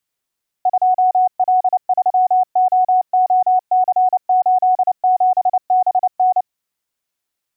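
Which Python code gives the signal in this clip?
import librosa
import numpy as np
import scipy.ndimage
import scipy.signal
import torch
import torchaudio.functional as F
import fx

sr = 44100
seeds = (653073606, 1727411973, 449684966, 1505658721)

y = fx.morse(sr, text='2L3OOC87BN', wpm=29, hz=739.0, level_db=-10.0)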